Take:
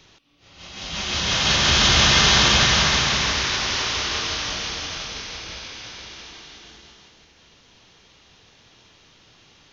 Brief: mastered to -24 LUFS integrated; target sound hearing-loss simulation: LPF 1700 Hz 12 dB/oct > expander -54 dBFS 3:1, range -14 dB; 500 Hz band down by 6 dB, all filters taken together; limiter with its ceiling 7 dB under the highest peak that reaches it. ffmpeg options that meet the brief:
-af "equalizer=f=500:t=o:g=-8,alimiter=limit=-11.5dB:level=0:latency=1,lowpass=1.7k,agate=range=-14dB:threshold=-54dB:ratio=3,volume=5dB"

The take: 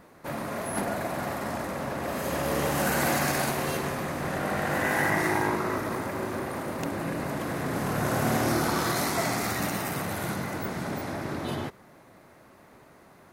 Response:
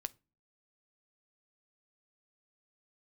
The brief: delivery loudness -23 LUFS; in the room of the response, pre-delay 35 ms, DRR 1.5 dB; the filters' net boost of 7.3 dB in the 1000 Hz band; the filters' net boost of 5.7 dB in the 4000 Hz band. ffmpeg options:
-filter_complex "[0:a]equalizer=f=1k:t=o:g=9,equalizer=f=4k:t=o:g=6.5,asplit=2[a][b];[1:a]atrim=start_sample=2205,adelay=35[c];[b][c]afir=irnorm=-1:irlink=0,volume=0.5dB[d];[a][d]amix=inputs=2:normalize=0,volume=-0.5dB"

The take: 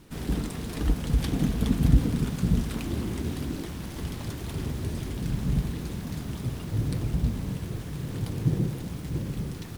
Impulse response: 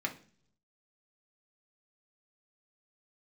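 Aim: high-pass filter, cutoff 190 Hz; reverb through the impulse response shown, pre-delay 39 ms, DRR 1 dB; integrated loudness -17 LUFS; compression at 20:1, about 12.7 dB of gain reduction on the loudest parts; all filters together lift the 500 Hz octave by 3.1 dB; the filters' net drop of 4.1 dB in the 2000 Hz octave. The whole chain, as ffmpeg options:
-filter_complex "[0:a]highpass=190,equalizer=f=500:t=o:g=4.5,equalizer=f=2k:t=o:g=-5.5,acompressor=threshold=-32dB:ratio=20,asplit=2[a][b];[1:a]atrim=start_sample=2205,adelay=39[c];[b][c]afir=irnorm=-1:irlink=0,volume=-5dB[d];[a][d]amix=inputs=2:normalize=0,volume=18dB"

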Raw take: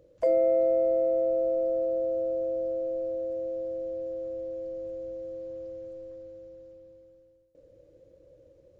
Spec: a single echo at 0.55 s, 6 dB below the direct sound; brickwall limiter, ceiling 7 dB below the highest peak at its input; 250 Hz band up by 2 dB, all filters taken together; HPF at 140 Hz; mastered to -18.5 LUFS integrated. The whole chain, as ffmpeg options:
-af "highpass=140,equalizer=f=250:t=o:g=3.5,alimiter=limit=-21.5dB:level=0:latency=1,aecho=1:1:550:0.501,volume=10.5dB"

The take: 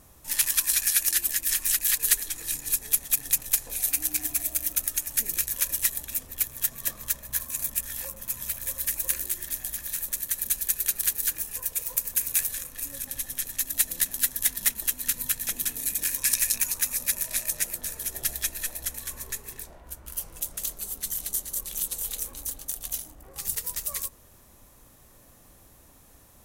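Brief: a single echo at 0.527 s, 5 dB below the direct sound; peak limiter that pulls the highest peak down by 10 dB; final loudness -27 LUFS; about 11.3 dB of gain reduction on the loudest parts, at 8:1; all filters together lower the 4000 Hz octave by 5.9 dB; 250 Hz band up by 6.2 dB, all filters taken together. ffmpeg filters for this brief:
-af "equalizer=f=250:t=o:g=7.5,equalizer=f=4k:t=o:g=-8,acompressor=threshold=-30dB:ratio=8,alimiter=limit=-24dB:level=0:latency=1,aecho=1:1:527:0.562,volume=8.5dB"

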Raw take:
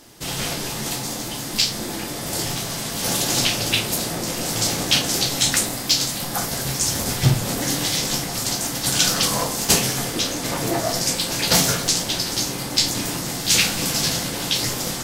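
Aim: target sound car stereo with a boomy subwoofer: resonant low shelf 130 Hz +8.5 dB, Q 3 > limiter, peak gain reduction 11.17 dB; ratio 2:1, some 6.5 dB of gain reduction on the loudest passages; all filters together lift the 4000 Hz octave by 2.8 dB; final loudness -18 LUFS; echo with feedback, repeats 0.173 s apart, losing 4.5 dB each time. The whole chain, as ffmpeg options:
-af "equalizer=f=4k:t=o:g=3.5,acompressor=threshold=-23dB:ratio=2,lowshelf=f=130:t=q:w=3:g=8.5,aecho=1:1:173|346|519|692|865|1038|1211|1384|1557:0.596|0.357|0.214|0.129|0.0772|0.0463|0.0278|0.0167|0.01,volume=7dB,alimiter=limit=-10dB:level=0:latency=1"

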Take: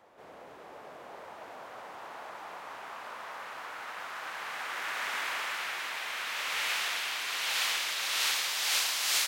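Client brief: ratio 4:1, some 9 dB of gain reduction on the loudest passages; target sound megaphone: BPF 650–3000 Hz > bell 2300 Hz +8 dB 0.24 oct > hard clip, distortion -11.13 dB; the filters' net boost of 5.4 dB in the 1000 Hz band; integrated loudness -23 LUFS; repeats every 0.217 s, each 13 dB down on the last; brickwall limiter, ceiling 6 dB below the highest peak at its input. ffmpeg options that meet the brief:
-af "equalizer=f=1k:t=o:g=7.5,acompressor=threshold=-35dB:ratio=4,alimiter=level_in=6dB:limit=-24dB:level=0:latency=1,volume=-6dB,highpass=650,lowpass=3k,equalizer=f=2.3k:t=o:w=0.24:g=8,aecho=1:1:217|434|651:0.224|0.0493|0.0108,asoftclip=type=hard:threshold=-38.5dB,volume=18dB"

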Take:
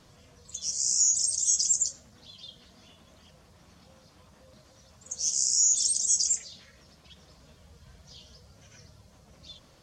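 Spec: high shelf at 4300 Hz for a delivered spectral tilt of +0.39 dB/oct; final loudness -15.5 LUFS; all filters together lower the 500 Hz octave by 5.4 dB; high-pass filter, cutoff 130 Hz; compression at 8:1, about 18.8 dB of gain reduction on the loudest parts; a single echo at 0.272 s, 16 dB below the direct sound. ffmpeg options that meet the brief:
-af "highpass=130,equalizer=f=500:t=o:g=-6.5,highshelf=f=4.3k:g=3.5,acompressor=threshold=-37dB:ratio=8,aecho=1:1:272:0.158,volume=23.5dB"

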